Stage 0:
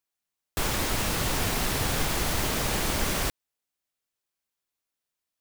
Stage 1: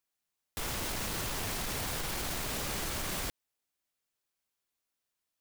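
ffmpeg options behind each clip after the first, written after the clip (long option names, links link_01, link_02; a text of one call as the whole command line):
ffmpeg -i in.wav -af "alimiter=limit=-22dB:level=0:latency=1:release=90,aeval=exprs='0.0299*(abs(mod(val(0)/0.0299+3,4)-2)-1)':channel_layout=same" out.wav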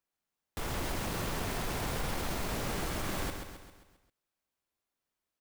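ffmpeg -i in.wav -filter_complex "[0:a]highshelf=frequency=2100:gain=-9,asplit=2[link_01][link_02];[link_02]aecho=0:1:133|266|399|532|665|798:0.473|0.241|0.123|0.0628|0.032|0.0163[link_03];[link_01][link_03]amix=inputs=2:normalize=0,volume=2.5dB" out.wav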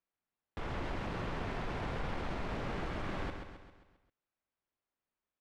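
ffmpeg -i in.wav -af "lowpass=2700,volume=-2.5dB" out.wav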